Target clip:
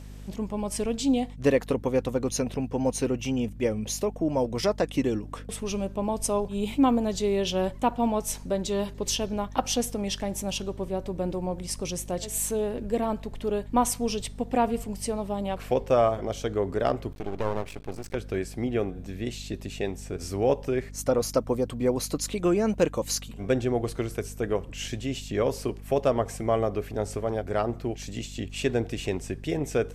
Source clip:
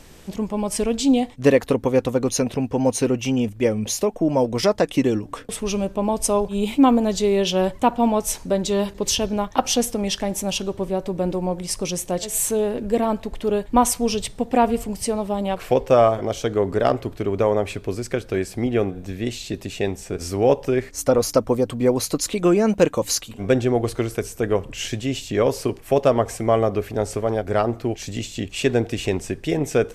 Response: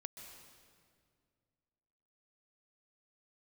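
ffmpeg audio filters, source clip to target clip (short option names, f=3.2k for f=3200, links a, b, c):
-filter_complex "[0:a]aeval=exprs='val(0)+0.02*(sin(2*PI*50*n/s)+sin(2*PI*2*50*n/s)/2+sin(2*PI*3*50*n/s)/3+sin(2*PI*4*50*n/s)/4+sin(2*PI*5*50*n/s)/5)':c=same,asettb=1/sr,asplit=3[a][b][c];[a]atrim=end=17.124[d];[b]atrim=start=17.12:end=18.15,asetpts=PTS-STARTPTS,afade=t=in:d=0.004:c=qsin,afade=t=out:st=1.026:d=0.004:c=qsin,aeval=exprs='max(val(0),0)':c=same[e];[c]atrim=start=18.146[f];[d][e]acrossfade=d=0.004:c1=hsin:c2=qsin[g];[g][f]acrossfade=d=0.004:c1=qsin:c2=hsin,volume=-6.5dB"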